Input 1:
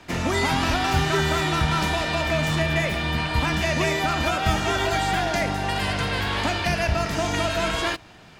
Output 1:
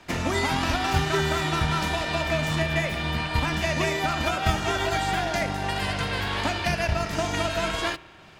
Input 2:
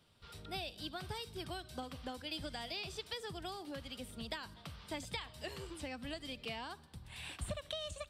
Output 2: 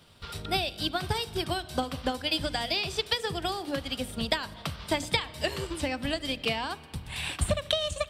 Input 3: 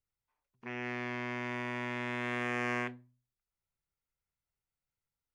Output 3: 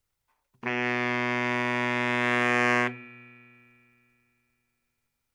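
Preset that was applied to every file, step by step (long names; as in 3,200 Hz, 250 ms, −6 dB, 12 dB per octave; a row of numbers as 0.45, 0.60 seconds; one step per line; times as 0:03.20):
mains-hum notches 60/120/180/240/300/360/420/480 Hz
transient designer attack +4 dB, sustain −3 dB
spring reverb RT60 3 s, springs 33 ms, chirp 55 ms, DRR 18.5 dB
normalise the peak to −9 dBFS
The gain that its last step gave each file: −2.5, +12.5, +11.0 decibels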